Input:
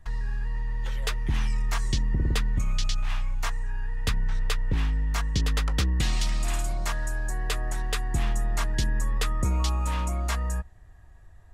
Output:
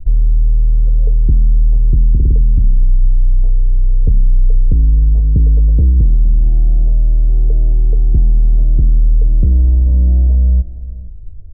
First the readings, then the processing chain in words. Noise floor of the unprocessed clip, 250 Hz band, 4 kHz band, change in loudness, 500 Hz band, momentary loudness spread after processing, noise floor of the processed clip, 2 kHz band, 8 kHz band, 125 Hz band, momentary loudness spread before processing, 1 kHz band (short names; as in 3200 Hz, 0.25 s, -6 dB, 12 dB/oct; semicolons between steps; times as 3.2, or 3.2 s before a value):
-49 dBFS, +9.0 dB, under -40 dB, +15.0 dB, +3.5 dB, 4 LU, -25 dBFS, under -40 dB, under -40 dB, +15.5 dB, 6 LU, under -15 dB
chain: steep low-pass 560 Hz 36 dB/oct; tilt -3.5 dB/oct; on a send: echo 0.466 s -17 dB; on the sum: compressor, threshold -10 dBFS, peak gain reduction 6 dB; gain +4 dB